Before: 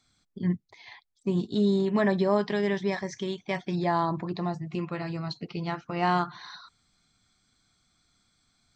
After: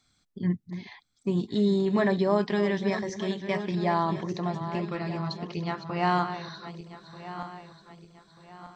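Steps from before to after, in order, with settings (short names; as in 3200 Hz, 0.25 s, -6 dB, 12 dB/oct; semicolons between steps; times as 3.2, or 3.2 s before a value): regenerating reverse delay 0.619 s, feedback 60%, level -10.5 dB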